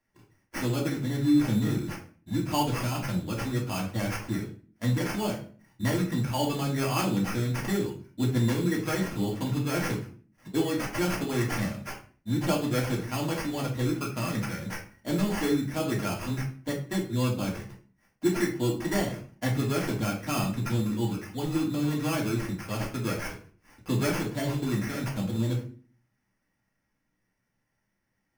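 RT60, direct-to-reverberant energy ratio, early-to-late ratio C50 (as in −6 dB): 0.45 s, −3.5 dB, 8.0 dB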